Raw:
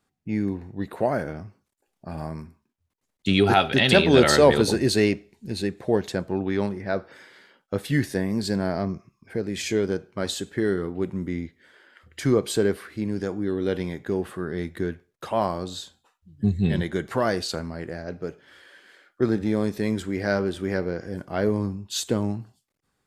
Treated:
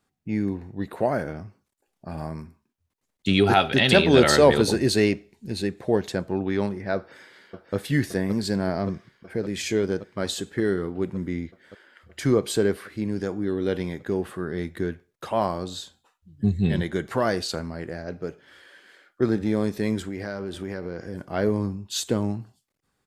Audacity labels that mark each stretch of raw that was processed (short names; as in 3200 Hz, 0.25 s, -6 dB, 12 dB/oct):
6.960000	7.750000	echo throw 0.57 s, feedback 80%, level -6.5 dB
20.040000	21.230000	compressor, threshold -27 dBFS